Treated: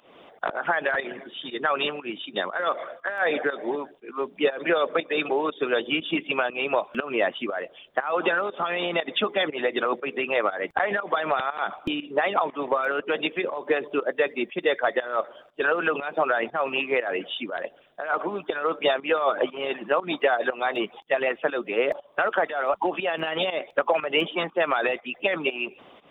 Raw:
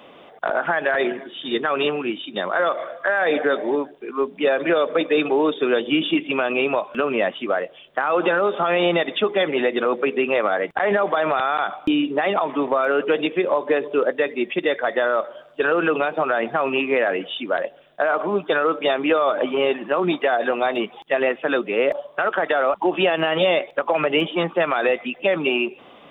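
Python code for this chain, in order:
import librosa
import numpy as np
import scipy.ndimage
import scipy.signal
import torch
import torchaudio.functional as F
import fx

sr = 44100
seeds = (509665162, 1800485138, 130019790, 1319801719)

y = fx.hpss(x, sr, part='harmonic', gain_db=-11)
y = fx.volume_shaper(y, sr, bpm=120, per_beat=1, depth_db=-15, release_ms=208.0, shape='fast start')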